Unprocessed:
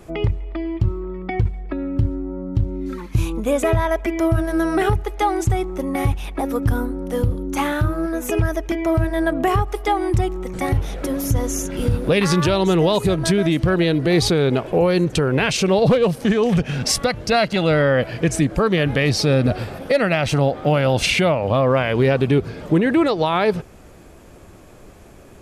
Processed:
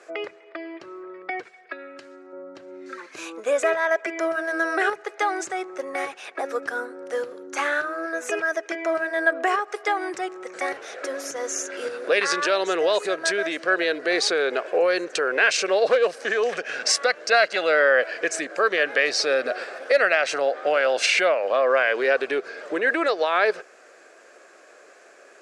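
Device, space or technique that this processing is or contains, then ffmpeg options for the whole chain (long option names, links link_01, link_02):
phone speaker on a table: -filter_complex "[0:a]highpass=frequency=460:width=0.5412,highpass=frequency=460:width=1.3066,equalizer=frequency=900:width_type=q:width=4:gain=-9,equalizer=frequency=1600:width_type=q:width=4:gain=8,equalizer=frequency=3300:width_type=q:width=4:gain=-6,lowpass=frequency=8100:width=0.5412,lowpass=frequency=8100:width=1.3066,asettb=1/sr,asplit=3[link_01][link_02][link_03];[link_01]atrim=end=1.434[link_04];[link_02]atrim=start=1.43:end=2.33,asetpts=PTS-STARTPTS,afade=type=in:duration=0.004:curve=qsin,afade=type=out:start_time=0.896:duration=0.004:curve=qsin,tiltshelf=frequency=1400:gain=-6.5[link_05];[link_03]atrim=start=2.326[link_06];[link_04][link_05]acrossfade=duration=0.004:curve1=hsin:curve2=qsin[link_07];[link_07][link_06]acrossfade=duration=0.004:curve1=qsin:curve2=hsin"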